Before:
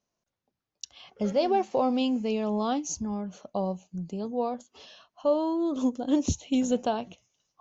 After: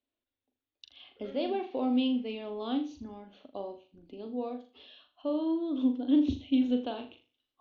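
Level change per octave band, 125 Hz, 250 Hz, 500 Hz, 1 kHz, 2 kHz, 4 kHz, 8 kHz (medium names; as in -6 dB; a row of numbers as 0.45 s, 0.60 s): under -10 dB, -1.0 dB, -7.5 dB, -10.5 dB, -4.5 dB, -3.0 dB, no reading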